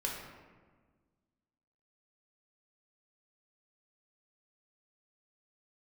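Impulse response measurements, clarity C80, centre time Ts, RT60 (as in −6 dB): 4.5 dB, 63 ms, 1.5 s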